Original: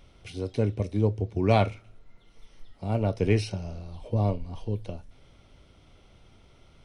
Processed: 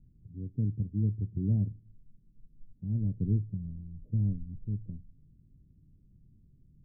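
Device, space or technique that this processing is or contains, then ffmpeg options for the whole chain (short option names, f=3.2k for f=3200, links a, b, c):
the neighbour's flat through the wall: -af "lowpass=f=260:w=0.5412,lowpass=f=260:w=1.3066,equalizer=f=150:t=o:w=0.71:g=7,volume=-5dB"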